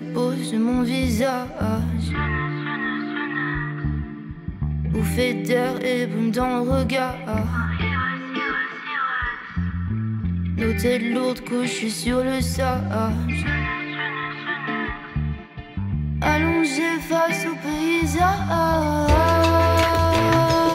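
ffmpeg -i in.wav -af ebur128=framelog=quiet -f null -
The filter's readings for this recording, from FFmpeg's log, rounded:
Integrated loudness:
  I:         -22.3 LUFS
  Threshold: -32.4 LUFS
Loudness range:
  LRA:         5.6 LU
  Threshold: -43.0 LUFS
  LRA low:   -25.2 LUFS
  LRA high:  -19.6 LUFS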